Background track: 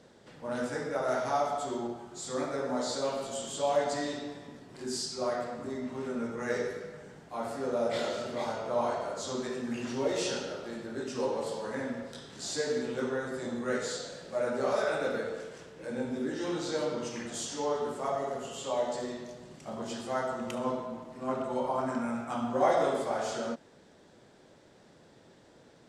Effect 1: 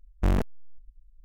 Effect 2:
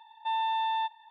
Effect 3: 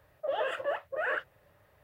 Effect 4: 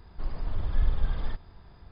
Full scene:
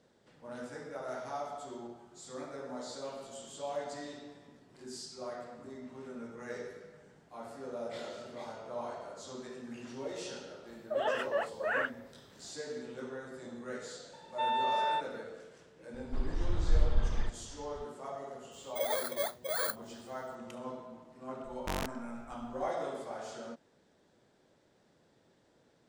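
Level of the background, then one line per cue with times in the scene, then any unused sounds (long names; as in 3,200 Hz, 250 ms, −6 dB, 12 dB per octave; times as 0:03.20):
background track −10 dB
0:10.67: mix in 3 −0.5 dB
0:14.13: mix in 2 −2 dB
0:15.94: mix in 4 −2 dB
0:18.52: mix in 3 −2 dB + samples in bit-reversed order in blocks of 16 samples
0:21.44: mix in 1 −2 dB + every bin compressed towards the loudest bin 2 to 1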